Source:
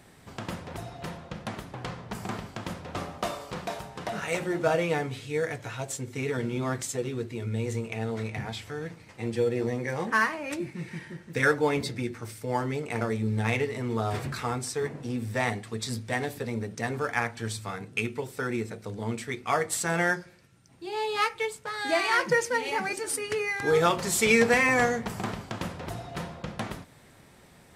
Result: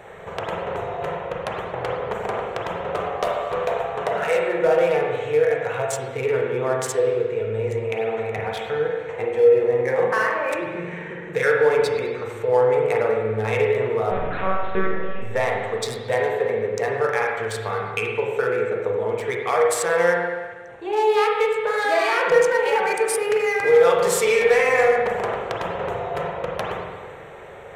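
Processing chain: Wiener smoothing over 9 samples; de-hum 347.5 Hz, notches 33; in parallel at +1 dB: limiter -20 dBFS, peak gain reduction 10.5 dB; on the sum: compressor 2:1, threshold -37 dBFS, peak gain reduction 12.5 dB; resonant low shelf 350 Hz -8.5 dB, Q 3; hard clip -19.5 dBFS, distortion -30 dB; 14.11–15.22 monotone LPC vocoder at 8 kHz 190 Hz; spring tank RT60 1.4 s, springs 40/46 ms, chirp 75 ms, DRR -0.5 dB; gain +7 dB

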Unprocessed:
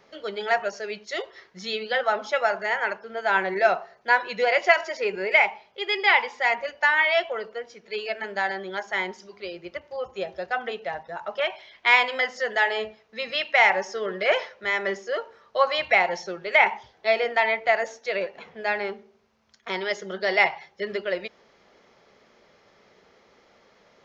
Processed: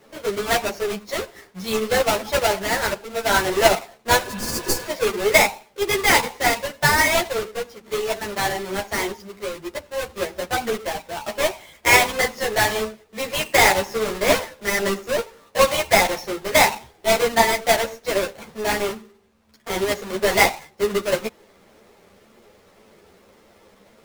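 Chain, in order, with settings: half-waves squared off; spectral repair 4.3–4.84, 430–4200 Hz before; in parallel at -8 dB: sample-rate reducer 1600 Hz, jitter 0%; on the sum: ensemble effect; gain +2.5 dB

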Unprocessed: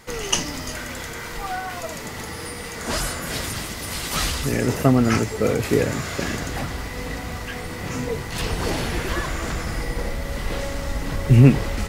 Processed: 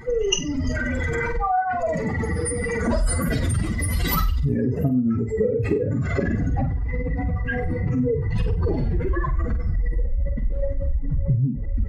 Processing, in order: spectral contrast raised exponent 2.8; compressor 12:1, threshold -27 dBFS, peak gain reduction 19.5 dB; on a send: flutter echo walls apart 8.1 m, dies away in 0.32 s; on the sum: gain +8.5 dB

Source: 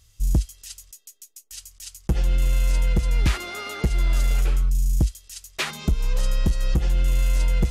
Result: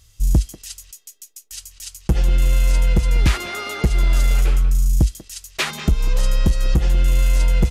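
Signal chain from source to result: speakerphone echo 0.19 s, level -12 dB; gain +4.5 dB

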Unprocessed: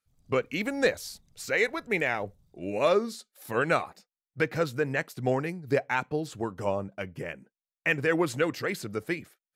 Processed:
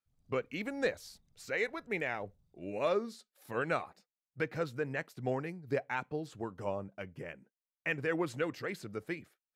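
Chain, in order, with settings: high shelf 5200 Hz -6.5 dB; gain -7.5 dB

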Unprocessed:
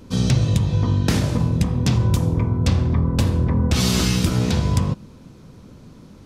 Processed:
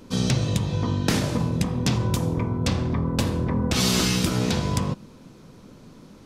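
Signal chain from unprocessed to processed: bell 66 Hz -10 dB 2.1 oct

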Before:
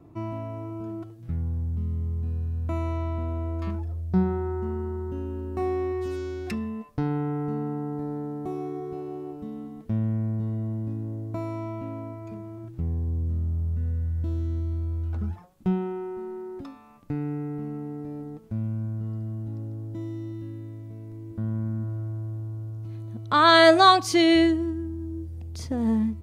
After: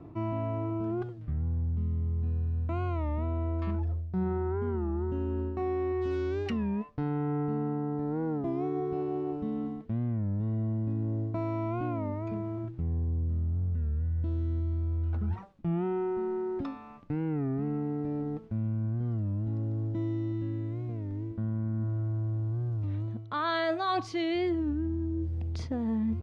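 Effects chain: LPF 3500 Hz 12 dB/oct; reverse; compressor 8:1, threshold -32 dBFS, peak gain reduction 20.5 dB; reverse; record warp 33 1/3 rpm, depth 160 cents; gain +4.5 dB

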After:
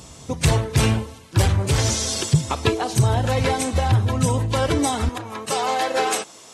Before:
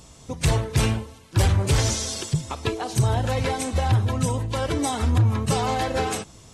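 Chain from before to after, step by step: vocal rider within 4 dB 0.5 s; HPF 57 Hz 12 dB/oct, from 5.09 s 410 Hz; gain +3.5 dB

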